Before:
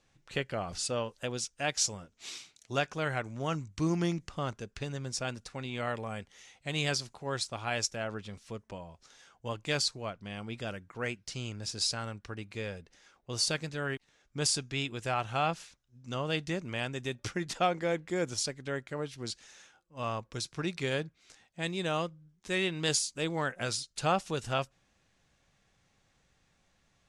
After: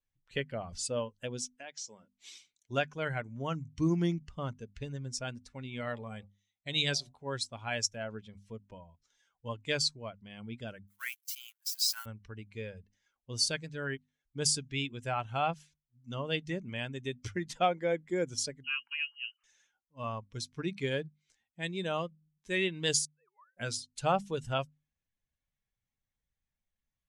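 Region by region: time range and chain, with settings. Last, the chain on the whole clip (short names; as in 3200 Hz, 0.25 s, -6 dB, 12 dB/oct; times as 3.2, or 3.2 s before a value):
1.56–2.12 BPF 220–7400 Hz + compressor 3:1, threshold -37 dBFS
5.81–7.14 de-hum 65.17 Hz, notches 19 + gate -52 dBFS, range -12 dB + bell 3800 Hz +9 dB 0.22 oct
10.87–12.06 switching spikes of -31 dBFS + gate -38 dBFS, range -18 dB + HPF 1000 Hz 24 dB/oct
18.64–19.44 inverted band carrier 3000 Hz + HPF 1100 Hz 24 dB/oct
23.05–23.57 sine-wave speech + band-pass 1200 Hz, Q 15 + compressor, threshold -49 dBFS
whole clip: per-bin expansion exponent 1.5; bell 1200 Hz -3 dB 0.5 oct; notches 50/100/150/200/250 Hz; gain +2.5 dB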